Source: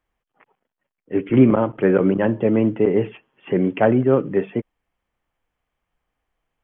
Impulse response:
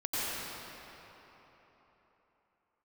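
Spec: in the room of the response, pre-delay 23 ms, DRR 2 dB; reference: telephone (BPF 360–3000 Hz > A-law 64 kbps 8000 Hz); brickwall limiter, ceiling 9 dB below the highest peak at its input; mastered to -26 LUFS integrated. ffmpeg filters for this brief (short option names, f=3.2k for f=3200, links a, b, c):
-filter_complex "[0:a]alimiter=limit=-11dB:level=0:latency=1,asplit=2[a][b];[1:a]atrim=start_sample=2205,adelay=23[c];[b][c]afir=irnorm=-1:irlink=0,volume=-10.5dB[d];[a][d]amix=inputs=2:normalize=0,highpass=360,lowpass=3k,volume=-2dB" -ar 8000 -c:a pcm_alaw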